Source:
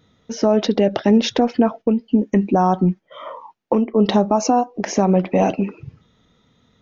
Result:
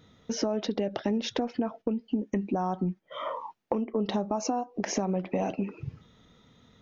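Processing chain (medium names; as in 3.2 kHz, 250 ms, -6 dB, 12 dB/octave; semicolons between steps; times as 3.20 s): compression 4:1, threshold -28 dBFS, peak gain reduction 15.5 dB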